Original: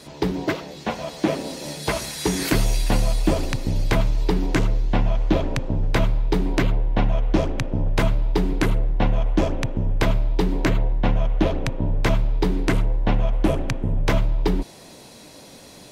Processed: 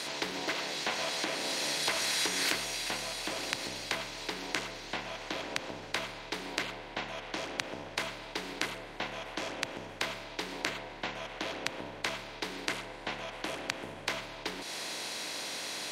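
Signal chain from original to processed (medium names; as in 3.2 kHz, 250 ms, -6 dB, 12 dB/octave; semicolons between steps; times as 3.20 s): spectral levelling over time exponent 0.6; compression, threshold -20 dBFS, peak gain reduction 8.5 dB; band-pass filter 3.5 kHz, Q 0.54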